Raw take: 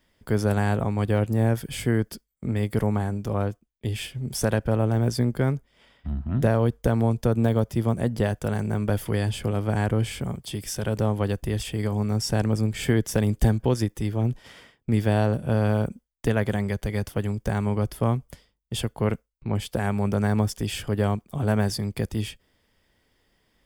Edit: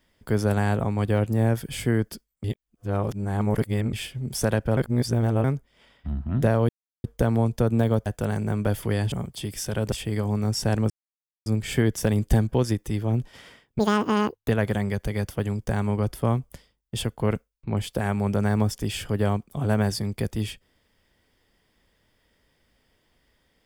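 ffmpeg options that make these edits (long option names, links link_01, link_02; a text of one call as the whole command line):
ffmpeg -i in.wav -filter_complex "[0:a]asplit=12[link_01][link_02][link_03][link_04][link_05][link_06][link_07][link_08][link_09][link_10][link_11][link_12];[link_01]atrim=end=2.442[link_13];[link_02]atrim=start=2.438:end=3.932,asetpts=PTS-STARTPTS,areverse[link_14];[link_03]atrim=start=3.928:end=4.772[link_15];[link_04]atrim=start=4.768:end=5.442,asetpts=PTS-STARTPTS,areverse[link_16];[link_05]atrim=start=5.438:end=6.69,asetpts=PTS-STARTPTS,afade=type=out:start_time=1.248:duration=0.004:curve=hsin,apad=pad_dur=0.35[link_17];[link_06]atrim=start=6.69:end=7.712,asetpts=PTS-STARTPTS,afade=type=in:duration=0.004:curve=hsin[link_18];[link_07]atrim=start=8.288:end=9.352[link_19];[link_08]atrim=start=10.218:end=11.022[link_20];[link_09]atrim=start=11.588:end=12.57,asetpts=PTS-STARTPTS,afade=type=out:start_time=0.978:duration=0.004:curve=hsin,apad=pad_dur=0.56[link_21];[link_10]atrim=start=12.57:end=14.904,asetpts=PTS-STARTPTS,afade=type=in:duration=0.004:curve=hsin[link_22];[link_11]atrim=start=14.9:end=16.27,asetpts=PTS-STARTPTS,asetrate=86877,aresample=44100[link_23];[link_12]atrim=start=16.266[link_24];[link_13][link_14]acrossfade=duration=0.004:curve1=hsin:curve2=hsin[link_25];[link_25][link_15]acrossfade=duration=0.004:curve1=hsin:curve2=hsin[link_26];[link_26][link_16]acrossfade=duration=0.004:curve1=hsin:curve2=hsin[link_27];[link_17][link_18]concat=n=2:v=0:a=1[link_28];[link_27][link_28]acrossfade=duration=0.004:curve1=hsin:curve2=hsin[link_29];[link_29][link_19]acrossfade=duration=0.004:curve1=hsin:curve2=hsin[link_30];[link_30][link_20]acrossfade=duration=0.004:curve1=hsin:curve2=hsin[link_31];[link_21][link_22]concat=n=2:v=0:a=1[link_32];[link_31][link_32]acrossfade=duration=0.004:curve1=hsin:curve2=hsin[link_33];[link_33][link_23]acrossfade=duration=0.004:curve1=hsin:curve2=hsin[link_34];[link_34][link_24]acrossfade=duration=0.004:curve1=hsin:curve2=hsin" out.wav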